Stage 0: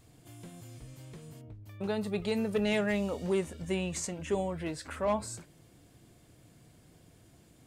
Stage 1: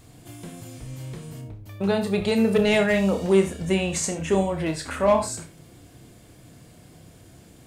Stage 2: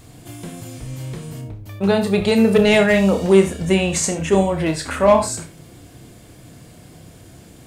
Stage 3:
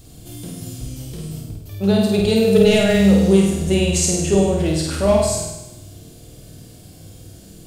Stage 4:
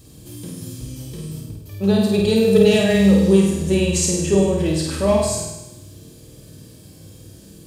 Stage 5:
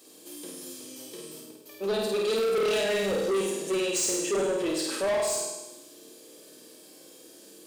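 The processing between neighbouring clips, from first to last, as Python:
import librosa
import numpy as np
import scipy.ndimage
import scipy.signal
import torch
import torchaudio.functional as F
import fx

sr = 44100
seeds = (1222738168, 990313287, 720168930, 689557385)

y1 = fx.room_flutter(x, sr, wall_m=5.3, rt60_s=0.22)
y1 = fx.rev_gated(y1, sr, seeds[0], gate_ms=100, shape='rising', drr_db=11.5)
y1 = F.gain(torch.from_numpy(y1), 9.0).numpy()
y2 = fx.attack_slew(y1, sr, db_per_s=390.0)
y2 = F.gain(torch.from_numpy(y2), 6.0).numpy()
y3 = fx.graphic_eq(y2, sr, hz=(125, 250, 500, 1000, 2000, 8000), db=(-3, -5, -3, -11, -11, -3))
y3 = fx.room_flutter(y3, sr, wall_m=8.7, rt60_s=0.96)
y3 = F.gain(torch.from_numpy(y3), 3.5).numpy()
y4 = fx.notch_comb(y3, sr, f0_hz=710.0)
y5 = scipy.signal.sosfilt(scipy.signal.butter(4, 320.0, 'highpass', fs=sr, output='sos'), y4)
y5 = 10.0 ** (-21.0 / 20.0) * np.tanh(y5 / 10.0 ** (-21.0 / 20.0))
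y5 = F.gain(torch.from_numpy(y5), -2.0).numpy()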